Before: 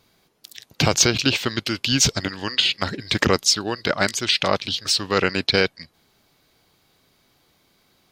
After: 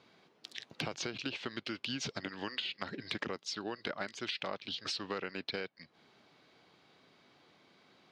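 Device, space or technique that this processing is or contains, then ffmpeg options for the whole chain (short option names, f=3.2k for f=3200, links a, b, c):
AM radio: -af "highpass=170,lowpass=3.6k,acompressor=threshold=-35dB:ratio=10,asoftclip=type=tanh:threshold=-16.5dB"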